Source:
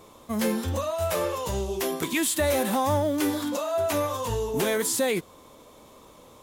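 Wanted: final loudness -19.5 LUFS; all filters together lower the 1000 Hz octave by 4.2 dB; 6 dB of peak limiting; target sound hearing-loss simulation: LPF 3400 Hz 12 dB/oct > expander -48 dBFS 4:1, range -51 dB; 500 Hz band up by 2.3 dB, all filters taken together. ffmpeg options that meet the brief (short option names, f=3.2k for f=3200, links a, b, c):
-af "equalizer=f=500:t=o:g=5,equalizer=f=1k:t=o:g=-7.5,alimiter=limit=-18.5dB:level=0:latency=1,lowpass=3.4k,agate=range=-51dB:threshold=-48dB:ratio=4,volume=8.5dB"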